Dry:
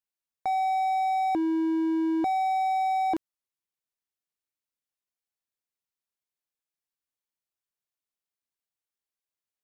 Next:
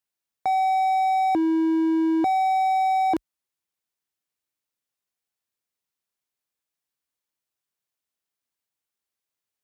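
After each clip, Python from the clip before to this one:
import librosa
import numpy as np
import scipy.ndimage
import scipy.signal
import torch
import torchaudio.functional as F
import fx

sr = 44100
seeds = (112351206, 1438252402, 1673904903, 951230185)

y = scipy.signal.sosfilt(scipy.signal.butter(4, 43.0, 'highpass', fs=sr, output='sos'), x)
y = y * librosa.db_to_amplitude(4.5)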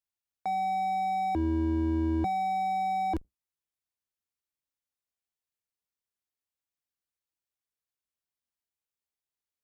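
y = fx.octave_divider(x, sr, octaves=2, level_db=1.0)
y = y * librosa.db_to_amplitude(-8.0)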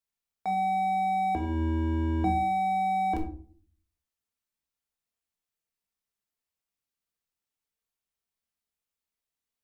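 y = fx.room_shoebox(x, sr, seeds[0], volume_m3=420.0, walls='furnished', distance_m=1.6)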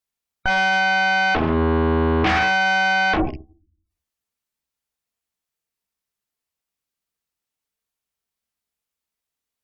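y = fx.rattle_buzz(x, sr, strikes_db=-37.0, level_db=-35.0)
y = fx.spec_gate(y, sr, threshold_db=-30, keep='strong')
y = fx.cheby_harmonics(y, sr, harmonics=(8,), levels_db=(-6,), full_scale_db=-15.5)
y = y * librosa.db_to_amplitude(4.0)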